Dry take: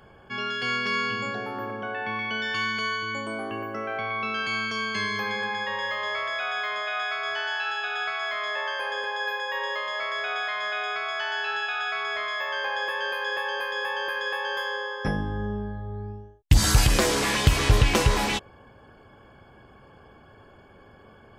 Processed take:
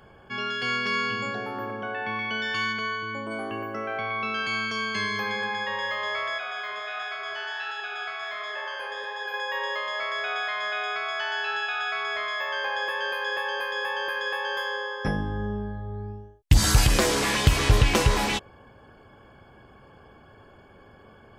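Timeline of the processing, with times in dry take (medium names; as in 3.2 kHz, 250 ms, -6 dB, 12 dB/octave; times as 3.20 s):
2.72–3.30 s: low-pass 3.2 kHz -> 1.5 kHz 6 dB/octave
6.38–9.34 s: flange 1.4 Hz, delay 2 ms, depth 8.6 ms, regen +68%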